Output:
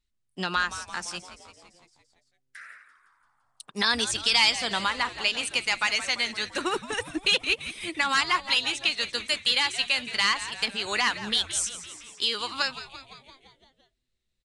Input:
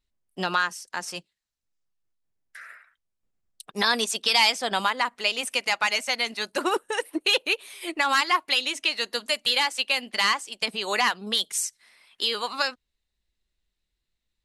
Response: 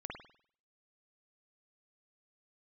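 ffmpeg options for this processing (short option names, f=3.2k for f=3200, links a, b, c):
-filter_complex "[0:a]equalizer=f=640:t=o:w=1.5:g=-7,asplit=8[a][b][c][d][e][f][g][h];[b]adelay=170,afreqshift=-130,volume=-13.5dB[i];[c]adelay=340,afreqshift=-260,volume=-17.5dB[j];[d]adelay=510,afreqshift=-390,volume=-21.5dB[k];[e]adelay=680,afreqshift=-520,volume=-25.5dB[l];[f]adelay=850,afreqshift=-650,volume=-29.6dB[m];[g]adelay=1020,afreqshift=-780,volume=-33.6dB[n];[h]adelay=1190,afreqshift=-910,volume=-37.6dB[o];[a][i][j][k][l][m][n][o]amix=inputs=8:normalize=0,aresample=22050,aresample=44100"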